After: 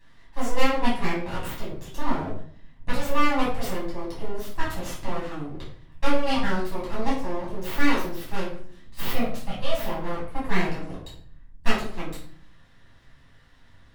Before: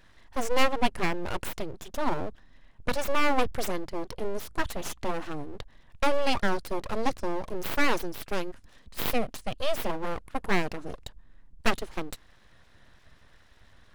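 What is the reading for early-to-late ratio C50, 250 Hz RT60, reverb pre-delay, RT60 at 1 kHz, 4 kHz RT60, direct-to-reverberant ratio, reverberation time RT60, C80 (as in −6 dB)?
4.5 dB, 0.80 s, 6 ms, 0.50 s, 0.40 s, −8.0 dB, 0.55 s, 8.5 dB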